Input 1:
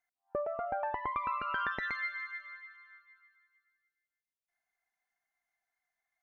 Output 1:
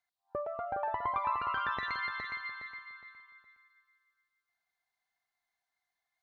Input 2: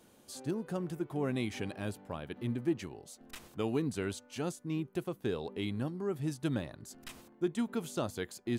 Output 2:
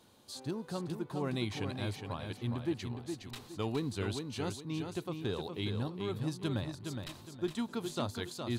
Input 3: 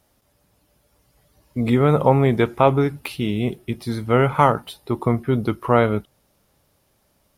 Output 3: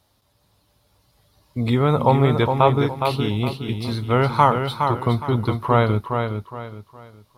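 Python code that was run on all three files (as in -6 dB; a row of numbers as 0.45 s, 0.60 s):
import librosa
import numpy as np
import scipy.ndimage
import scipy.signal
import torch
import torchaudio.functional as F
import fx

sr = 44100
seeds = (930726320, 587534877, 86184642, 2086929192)

p1 = fx.graphic_eq_15(x, sr, hz=(100, 1000, 4000), db=(8, 6, 10))
p2 = p1 + fx.echo_feedback(p1, sr, ms=414, feedback_pct=31, wet_db=-6, dry=0)
y = p2 * librosa.db_to_amplitude(-3.5)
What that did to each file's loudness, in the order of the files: +0.5 LU, -1.0 LU, -0.5 LU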